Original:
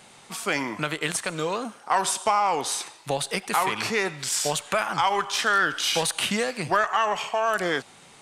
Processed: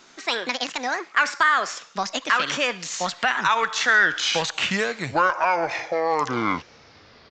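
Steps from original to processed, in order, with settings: speed glide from 173% -> 52%; dynamic EQ 1800 Hz, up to +5 dB, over -34 dBFS, Q 1; downsampling 16000 Hz

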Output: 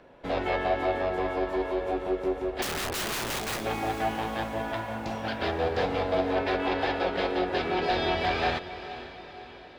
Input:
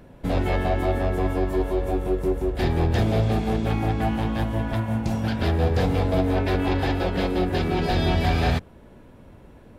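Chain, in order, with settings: three-band isolator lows -16 dB, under 350 Hz, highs -19 dB, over 5500 Hz; 2.62–3.61 wrapped overs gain 26.5 dB; on a send: diffused feedback echo 0.468 s, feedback 55%, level -13 dB

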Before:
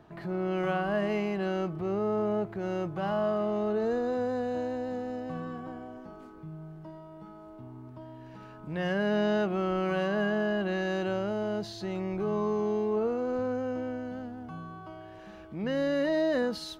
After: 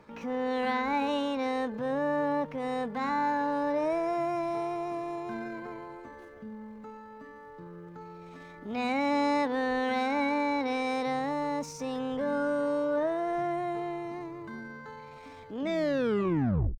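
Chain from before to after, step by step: tape stop at the end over 1.20 s; pitch shift +5.5 st

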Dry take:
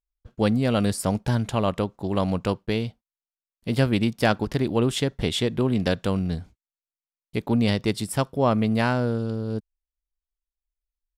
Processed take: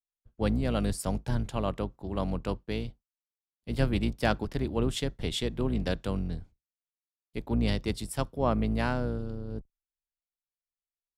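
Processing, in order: octaver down 2 oct, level -2 dB; three-band expander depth 40%; gain -7.5 dB

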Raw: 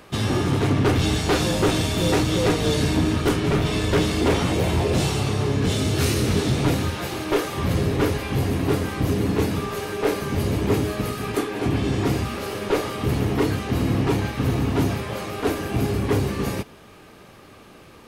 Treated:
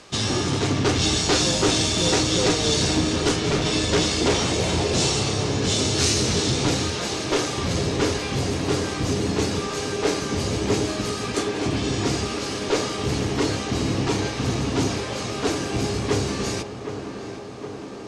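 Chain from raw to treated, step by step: LPF 6900 Hz 24 dB/oct; tone controls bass -3 dB, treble +15 dB; tape echo 0.764 s, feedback 84%, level -8.5 dB, low-pass 1900 Hz; gain -1 dB

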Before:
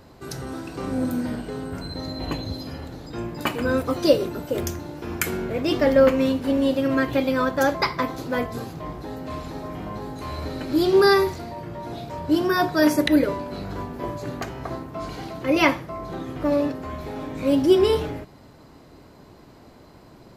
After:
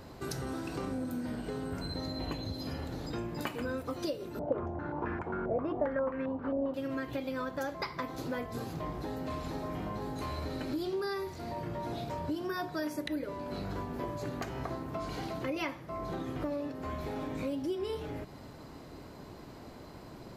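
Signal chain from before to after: compressor 6:1, threshold -34 dBFS, peak gain reduction 21.5 dB; 4.39–6.74 stepped low-pass 7.5 Hz 680–1700 Hz

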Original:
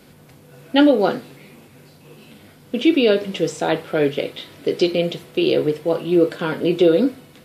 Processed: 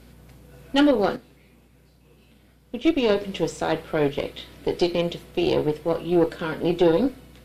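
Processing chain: hum 60 Hz, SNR 26 dB; added harmonics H 6 -21 dB, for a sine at -1 dBFS; 1.16–3.09 upward expander 1.5:1, over -26 dBFS; gain -4.5 dB

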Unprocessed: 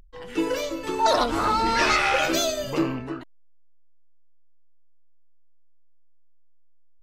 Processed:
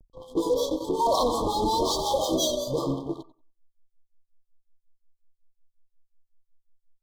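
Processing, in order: dynamic EQ 490 Hz, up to +6 dB, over -41 dBFS, Q 4.8; harmonic tremolo 5.5 Hz, depth 100%, crossover 680 Hz; on a send: tape echo 91 ms, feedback 20%, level -6.5 dB, low-pass 2300 Hz; on the sum: vibrato 1.1 Hz 78 cents; in parallel at -9 dB: fuzz box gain 29 dB, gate -38 dBFS; on the sum: brick-wall FIR band-stop 1200–3100 Hz; gain -3.5 dB

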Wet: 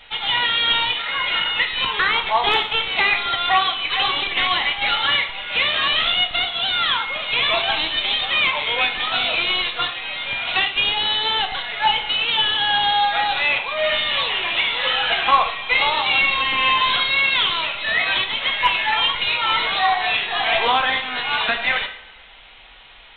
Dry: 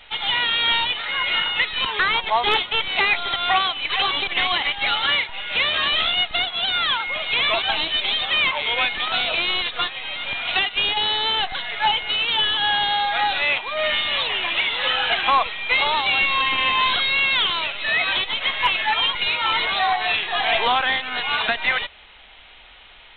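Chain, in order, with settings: two-slope reverb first 0.55 s, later 1.7 s, DRR 4 dB

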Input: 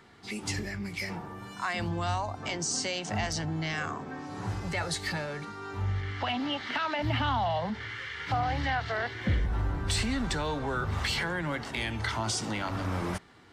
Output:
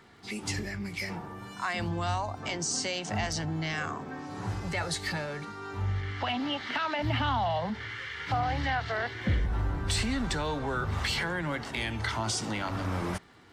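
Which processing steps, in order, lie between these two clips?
crackle 32/s -54 dBFS

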